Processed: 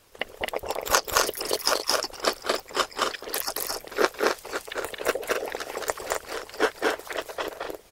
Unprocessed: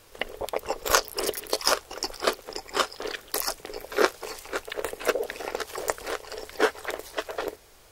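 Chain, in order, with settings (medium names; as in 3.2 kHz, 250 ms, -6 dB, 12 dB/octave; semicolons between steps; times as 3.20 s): Chebyshev shaper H 2 -21 dB, 4 -31 dB, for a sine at -2 dBFS; loudspeakers at several distances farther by 76 m -1 dB, 91 m -5 dB; harmonic-percussive split harmonic -10 dB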